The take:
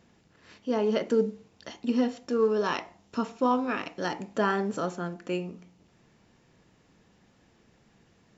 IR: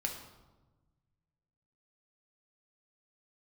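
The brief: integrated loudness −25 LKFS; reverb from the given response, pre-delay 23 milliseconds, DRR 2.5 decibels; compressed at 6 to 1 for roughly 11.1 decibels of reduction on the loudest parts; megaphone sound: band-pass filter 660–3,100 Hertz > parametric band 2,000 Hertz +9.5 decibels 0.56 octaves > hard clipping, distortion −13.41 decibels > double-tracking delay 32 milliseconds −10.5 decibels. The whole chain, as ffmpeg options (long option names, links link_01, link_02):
-filter_complex "[0:a]acompressor=threshold=-32dB:ratio=6,asplit=2[link_01][link_02];[1:a]atrim=start_sample=2205,adelay=23[link_03];[link_02][link_03]afir=irnorm=-1:irlink=0,volume=-4.5dB[link_04];[link_01][link_04]amix=inputs=2:normalize=0,highpass=660,lowpass=3100,equalizer=frequency=2000:width_type=o:width=0.56:gain=9.5,asoftclip=type=hard:threshold=-32dB,asplit=2[link_05][link_06];[link_06]adelay=32,volume=-10.5dB[link_07];[link_05][link_07]amix=inputs=2:normalize=0,volume=15dB"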